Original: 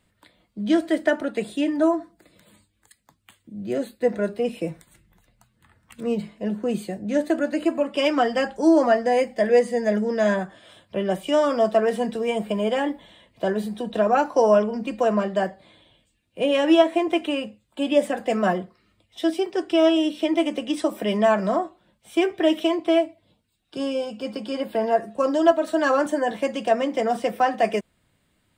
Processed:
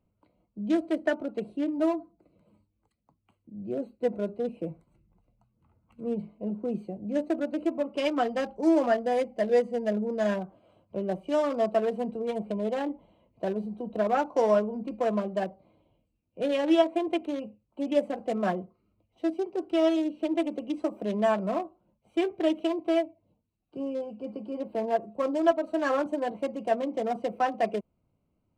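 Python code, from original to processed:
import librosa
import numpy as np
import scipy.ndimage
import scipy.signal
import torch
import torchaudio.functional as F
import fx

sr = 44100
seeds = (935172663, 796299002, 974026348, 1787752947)

y = fx.wiener(x, sr, points=25)
y = y * 10.0 ** (-5.5 / 20.0)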